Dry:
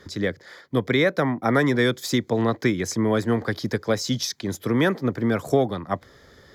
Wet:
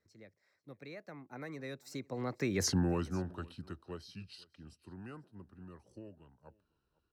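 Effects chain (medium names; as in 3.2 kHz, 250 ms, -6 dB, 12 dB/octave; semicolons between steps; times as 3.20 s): Doppler pass-by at 2.45 s, 55 m/s, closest 3.6 m; bass shelf 75 Hz +8.5 dB; band-stop 3.8 kHz, Q 10; in parallel at +2 dB: peak limiter -27.5 dBFS, peak gain reduction 11 dB; on the sum: delay 456 ms -24 dB; speed mistake 48 kHz file played as 44.1 kHz; trim -6.5 dB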